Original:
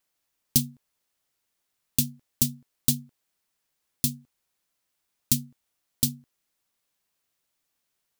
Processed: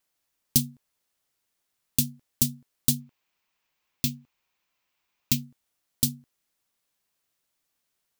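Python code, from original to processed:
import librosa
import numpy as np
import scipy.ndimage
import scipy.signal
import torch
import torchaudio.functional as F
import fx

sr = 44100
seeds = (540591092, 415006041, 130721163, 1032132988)

y = fx.graphic_eq_15(x, sr, hz=(1000, 2500, 10000), db=(6, 8, -10), at=(3.0, 5.43))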